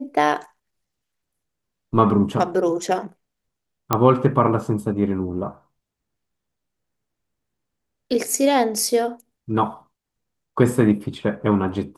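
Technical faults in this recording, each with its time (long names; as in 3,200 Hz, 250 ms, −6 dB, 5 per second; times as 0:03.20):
0:03.93: click −3 dBFS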